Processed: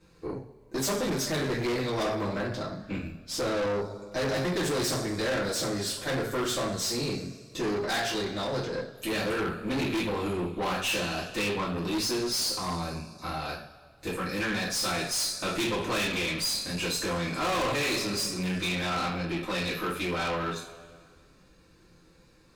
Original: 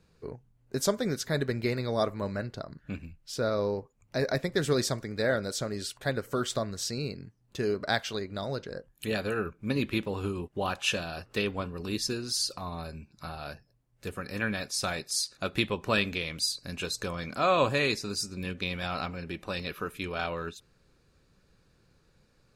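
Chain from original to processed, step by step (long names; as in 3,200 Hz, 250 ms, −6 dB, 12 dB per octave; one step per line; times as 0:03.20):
coupled-rooms reverb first 0.39 s, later 1.8 s, from −18 dB, DRR −8.5 dB
tube saturation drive 26 dB, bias 0.4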